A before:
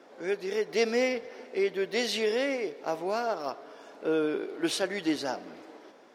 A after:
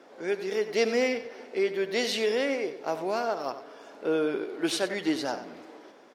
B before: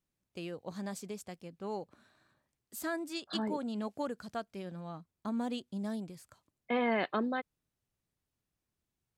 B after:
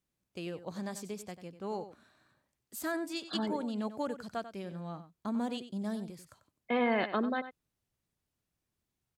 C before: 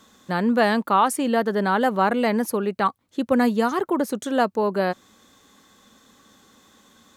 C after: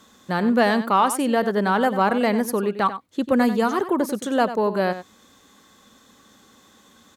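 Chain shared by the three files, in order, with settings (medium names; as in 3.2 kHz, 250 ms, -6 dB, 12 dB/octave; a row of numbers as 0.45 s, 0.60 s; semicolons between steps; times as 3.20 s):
Chebyshev shaper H 5 -32 dB, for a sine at -6.5 dBFS; echo from a far wall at 16 m, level -12 dB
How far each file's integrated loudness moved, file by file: +1.0 LU, +1.5 LU, +1.0 LU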